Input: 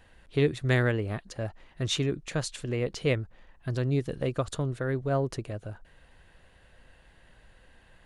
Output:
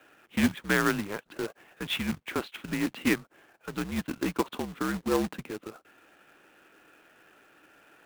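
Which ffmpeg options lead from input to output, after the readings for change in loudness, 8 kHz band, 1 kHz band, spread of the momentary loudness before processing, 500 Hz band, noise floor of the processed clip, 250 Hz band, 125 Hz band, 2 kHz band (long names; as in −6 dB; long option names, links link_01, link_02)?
−0.5 dB, 0.0 dB, +4.0 dB, 13 LU, −4.0 dB, −67 dBFS, +3.5 dB, −11.0 dB, +3.5 dB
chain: -af "highpass=frequency=410:width_type=q:width=0.5412,highpass=frequency=410:width_type=q:width=1.307,lowpass=frequency=3400:width_type=q:width=0.5176,lowpass=frequency=3400:width_type=q:width=0.7071,lowpass=frequency=3400:width_type=q:width=1.932,afreqshift=-200,acrusher=bits=2:mode=log:mix=0:aa=0.000001,volume=3.5dB"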